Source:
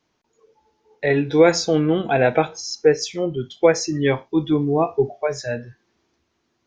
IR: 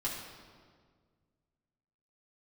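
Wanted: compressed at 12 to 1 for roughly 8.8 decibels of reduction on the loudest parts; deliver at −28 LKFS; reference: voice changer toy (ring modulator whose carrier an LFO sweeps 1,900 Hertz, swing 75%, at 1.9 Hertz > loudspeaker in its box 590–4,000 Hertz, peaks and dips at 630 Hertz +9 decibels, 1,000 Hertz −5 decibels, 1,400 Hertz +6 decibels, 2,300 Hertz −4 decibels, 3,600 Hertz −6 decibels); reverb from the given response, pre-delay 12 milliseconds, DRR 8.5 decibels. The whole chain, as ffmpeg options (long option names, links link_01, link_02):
-filter_complex "[0:a]acompressor=threshold=-17dB:ratio=12,asplit=2[link_01][link_02];[1:a]atrim=start_sample=2205,adelay=12[link_03];[link_02][link_03]afir=irnorm=-1:irlink=0,volume=-12dB[link_04];[link_01][link_04]amix=inputs=2:normalize=0,aeval=exprs='val(0)*sin(2*PI*1900*n/s+1900*0.75/1.9*sin(2*PI*1.9*n/s))':channel_layout=same,highpass=590,equalizer=frequency=630:width_type=q:width=4:gain=9,equalizer=frequency=1000:width_type=q:width=4:gain=-5,equalizer=frequency=1400:width_type=q:width=4:gain=6,equalizer=frequency=2300:width_type=q:width=4:gain=-4,equalizer=frequency=3600:width_type=q:width=4:gain=-6,lowpass=frequency=4000:width=0.5412,lowpass=frequency=4000:width=1.3066,volume=-2dB"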